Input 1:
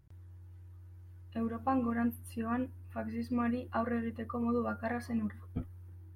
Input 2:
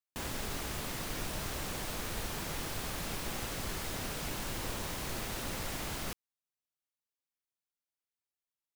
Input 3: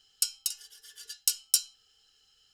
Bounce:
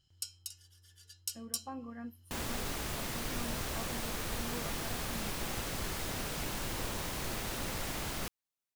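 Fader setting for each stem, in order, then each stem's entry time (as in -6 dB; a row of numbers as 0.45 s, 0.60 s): -12.5 dB, +0.5 dB, -12.5 dB; 0.00 s, 2.15 s, 0.00 s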